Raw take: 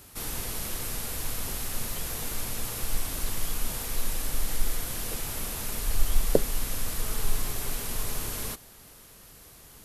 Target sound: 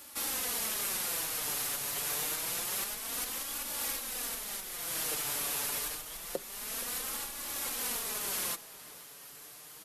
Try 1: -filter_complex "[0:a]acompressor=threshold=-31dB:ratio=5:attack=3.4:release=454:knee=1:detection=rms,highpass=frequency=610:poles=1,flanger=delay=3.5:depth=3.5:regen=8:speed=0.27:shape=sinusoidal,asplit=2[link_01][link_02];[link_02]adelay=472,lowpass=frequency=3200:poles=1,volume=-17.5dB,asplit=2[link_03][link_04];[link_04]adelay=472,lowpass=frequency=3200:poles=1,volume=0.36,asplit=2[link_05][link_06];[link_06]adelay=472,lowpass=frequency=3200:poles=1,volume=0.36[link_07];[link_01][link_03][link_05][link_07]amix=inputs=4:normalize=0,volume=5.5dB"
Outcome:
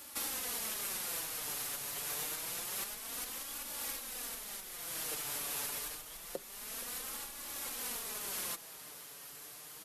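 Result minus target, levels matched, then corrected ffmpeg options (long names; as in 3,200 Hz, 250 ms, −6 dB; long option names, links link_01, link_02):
downward compressor: peak gain reduction +5 dB
-filter_complex "[0:a]acompressor=threshold=-24.5dB:ratio=5:attack=3.4:release=454:knee=1:detection=rms,highpass=frequency=610:poles=1,flanger=delay=3.5:depth=3.5:regen=8:speed=0.27:shape=sinusoidal,asplit=2[link_01][link_02];[link_02]adelay=472,lowpass=frequency=3200:poles=1,volume=-17.5dB,asplit=2[link_03][link_04];[link_04]adelay=472,lowpass=frequency=3200:poles=1,volume=0.36,asplit=2[link_05][link_06];[link_06]adelay=472,lowpass=frequency=3200:poles=1,volume=0.36[link_07];[link_01][link_03][link_05][link_07]amix=inputs=4:normalize=0,volume=5.5dB"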